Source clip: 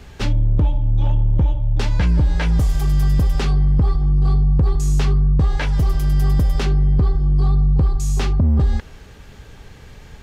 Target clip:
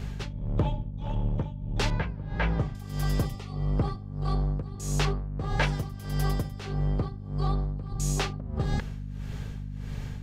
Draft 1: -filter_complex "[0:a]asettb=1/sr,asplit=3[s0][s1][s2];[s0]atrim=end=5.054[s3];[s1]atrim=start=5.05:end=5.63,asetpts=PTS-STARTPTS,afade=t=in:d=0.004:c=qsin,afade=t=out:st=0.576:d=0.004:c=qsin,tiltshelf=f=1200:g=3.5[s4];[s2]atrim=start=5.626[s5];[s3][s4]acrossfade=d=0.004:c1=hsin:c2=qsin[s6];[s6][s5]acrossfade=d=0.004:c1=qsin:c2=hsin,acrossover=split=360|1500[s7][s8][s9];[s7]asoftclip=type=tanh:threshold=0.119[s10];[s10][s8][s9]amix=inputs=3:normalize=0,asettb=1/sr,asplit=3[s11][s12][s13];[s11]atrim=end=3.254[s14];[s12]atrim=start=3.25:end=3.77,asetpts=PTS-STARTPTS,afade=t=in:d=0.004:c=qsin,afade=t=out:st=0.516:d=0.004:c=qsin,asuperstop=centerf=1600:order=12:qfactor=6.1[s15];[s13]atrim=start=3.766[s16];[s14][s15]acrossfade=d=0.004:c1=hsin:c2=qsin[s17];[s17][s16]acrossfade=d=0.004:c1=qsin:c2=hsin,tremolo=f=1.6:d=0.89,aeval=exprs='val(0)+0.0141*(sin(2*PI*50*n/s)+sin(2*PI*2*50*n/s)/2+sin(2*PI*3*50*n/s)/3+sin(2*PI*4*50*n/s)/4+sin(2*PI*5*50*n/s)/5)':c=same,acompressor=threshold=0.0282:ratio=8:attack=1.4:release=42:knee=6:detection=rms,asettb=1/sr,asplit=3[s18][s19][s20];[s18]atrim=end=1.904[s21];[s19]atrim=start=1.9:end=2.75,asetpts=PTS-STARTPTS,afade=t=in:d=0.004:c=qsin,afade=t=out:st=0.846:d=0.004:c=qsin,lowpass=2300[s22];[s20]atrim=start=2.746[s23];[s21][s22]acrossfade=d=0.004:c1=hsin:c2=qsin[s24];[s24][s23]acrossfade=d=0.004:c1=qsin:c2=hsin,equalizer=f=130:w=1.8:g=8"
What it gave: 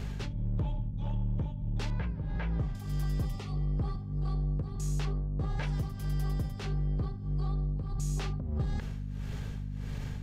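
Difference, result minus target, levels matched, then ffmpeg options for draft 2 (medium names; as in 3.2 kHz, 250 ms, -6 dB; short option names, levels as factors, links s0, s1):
compression: peak gain reduction +14.5 dB; saturation: distortion -4 dB
-filter_complex "[0:a]asettb=1/sr,asplit=3[s0][s1][s2];[s0]atrim=end=5.054[s3];[s1]atrim=start=5.05:end=5.63,asetpts=PTS-STARTPTS,afade=t=in:d=0.004:c=qsin,afade=t=out:st=0.576:d=0.004:c=qsin,tiltshelf=f=1200:g=3.5[s4];[s2]atrim=start=5.626[s5];[s3][s4]acrossfade=d=0.004:c1=hsin:c2=qsin[s6];[s6][s5]acrossfade=d=0.004:c1=qsin:c2=hsin,acrossover=split=360|1500[s7][s8][s9];[s7]asoftclip=type=tanh:threshold=0.0447[s10];[s10][s8][s9]amix=inputs=3:normalize=0,asettb=1/sr,asplit=3[s11][s12][s13];[s11]atrim=end=3.254[s14];[s12]atrim=start=3.25:end=3.77,asetpts=PTS-STARTPTS,afade=t=in:d=0.004:c=qsin,afade=t=out:st=0.516:d=0.004:c=qsin,asuperstop=centerf=1600:order=12:qfactor=6.1[s15];[s13]atrim=start=3.766[s16];[s14][s15]acrossfade=d=0.004:c1=hsin:c2=qsin[s17];[s17][s16]acrossfade=d=0.004:c1=qsin:c2=hsin,tremolo=f=1.6:d=0.89,aeval=exprs='val(0)+0.0141*(sin(2*PI*50*n/s)+sin(2*PI*2*50*n/s)/2+sin(2*PI*3*50*n/s)/3+sin(2*PI*4*50*n/s)/4+sin(2*PI*5*50*n/s)/5)':c=same,asettb=1/sr,asplit=3[s18][s19][s20];[s18]atrim=end=1.904[s21];[s19]atrim=start=1.9:end=2.75,asetpts=PTS-STARTPTS,afade=t=in:d=0.004:c=qsin,afade=t=out:st=0.846:d=0.004:c=qsin,lowpass=2300[s22];[s20]atrim=start=2.746[s23];[s21][s22]acrossfade=d=0.004:c1=hsin:c2=qsin[s24];[s24][s23]acrossfade=d=0.004:c1=qsin:c2=hsin,equalizer=f=130:w=1.8:g=8"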